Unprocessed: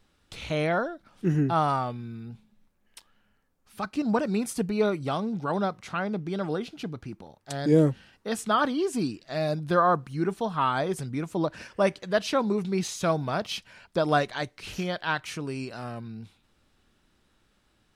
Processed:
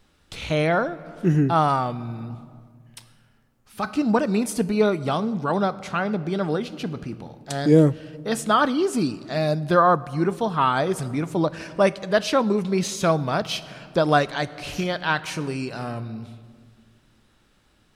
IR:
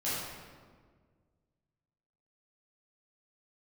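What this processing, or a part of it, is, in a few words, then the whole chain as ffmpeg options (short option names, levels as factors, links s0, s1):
compressed reverb return: -filter_complex "[0:a]asplit=2[s0][s1];[1:a]atrim=start_sample=2205[s2];[s1][s2]afir=irnorm=-1:irlink=0,acompressor=threshold=0.0708:ratio=6,volume=0.158[s3];[s0][s3]amix=inputs=2:normalize=0,volume=1.68"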